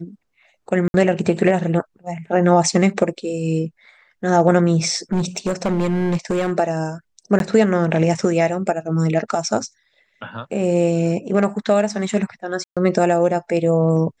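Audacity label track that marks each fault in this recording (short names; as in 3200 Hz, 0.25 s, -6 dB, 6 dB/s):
0.880000	0.940000	gap 61 ms
5.120000	6.520000	clipped -15.5 dBFS
7.390000	7.400000	gap 12 ms
12.640000	12.770000	gap 0.126 s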